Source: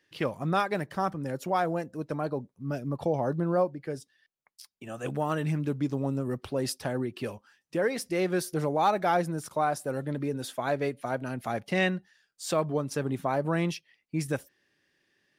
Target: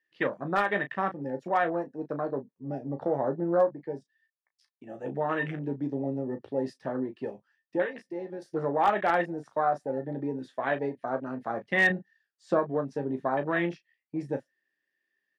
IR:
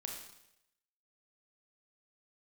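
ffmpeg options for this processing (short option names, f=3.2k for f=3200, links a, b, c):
-filter_complex "[0:a]equalizer=f=1.8k:w=7.3:g=13,asettb=1/sr,asplit=3[a][b][c];[a]atrim=end=7.824[d];[b]atrim=start=7.82:end=8.42,asetpts=PTS-STARTPTS,afade=t=in:d=0.004:c=qsin,afade=t=out:st=0.596:d=0.004:c=qsin,acompressor=threshold=-39dB:ratio=2[e];[c]atrim=start=8.416[f];[d][e]acrossfade=d=0.004:c1=hsin:c2=qsin[g];[g][f]acrossfade=d=0.004:c1=qsin:c2=hsin,afwtdn=0.0251,deesser=0.8,highpass=220,lowpass=5.1k,aecho=1:1:15|35:0.376|0.299,asoftclip=type=hard:threshold=-14.5dB,asettb=1/sr,asplit=3[h][i][j];[h]atrim=end=11.904[k];[i]atrim=start=11.9:end=12.59,asetpts=PTS-STARTPTS,afade=t=in:d=0.004:c=qsin,afade=t=out:st=0.686:d=0.004:c=qsin,lowshelf=f=390:g=8[l];[j]atrim=start=12.586[m];[k][l]acrossfade=d=0.004:c1=hsin:c2=qsin[n];[n][m]acrossfade=d=0.004:c1=qsin:c2=hsin"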